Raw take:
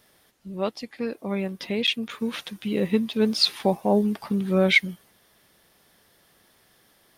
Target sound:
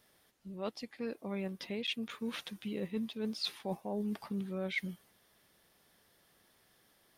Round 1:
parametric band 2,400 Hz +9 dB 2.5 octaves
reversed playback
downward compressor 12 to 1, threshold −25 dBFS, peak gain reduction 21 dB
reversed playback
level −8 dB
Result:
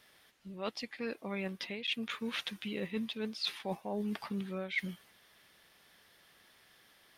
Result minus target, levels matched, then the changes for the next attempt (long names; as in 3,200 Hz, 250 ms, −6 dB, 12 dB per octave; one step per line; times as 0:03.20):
2,000 Hz band +2.5 dB
remove: parametric band 2,400 Hz +9 dB 2.5 octaves